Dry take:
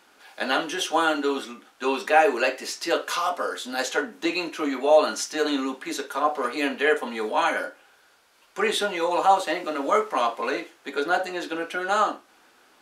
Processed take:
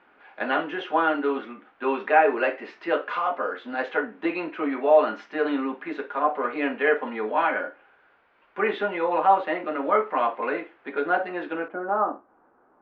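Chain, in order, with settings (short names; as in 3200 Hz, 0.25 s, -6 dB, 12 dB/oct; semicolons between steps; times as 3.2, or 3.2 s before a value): LPF 2400 Hz 24 dB/oct, from 11.68 s 1200 Hz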